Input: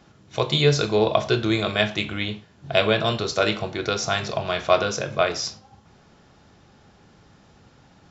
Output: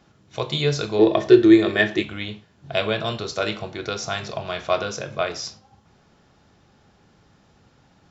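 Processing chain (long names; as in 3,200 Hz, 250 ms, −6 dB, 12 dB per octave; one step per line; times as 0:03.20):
0:00.99–0:02.03: hollow resonant body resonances 350/1,800 Hz, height 18 dB, ringing for 45 ms
level −3.5 dB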